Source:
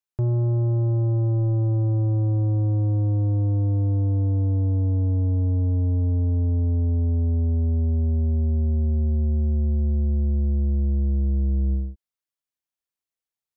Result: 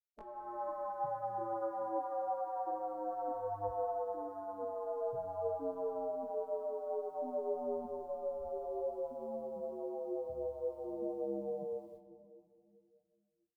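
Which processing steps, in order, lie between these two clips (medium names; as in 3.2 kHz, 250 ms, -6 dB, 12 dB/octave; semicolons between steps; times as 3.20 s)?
high-pass 100 Hz 6 dB/octave; spectral gate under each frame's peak -20 dB weak; on a send at -7.5 dB: reverberation RT60 2.3 s, pre-delay 7 ms; on the sum: level rider gain up to 14.5 dB; detune thickener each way 19 cents; trim -2.5 dB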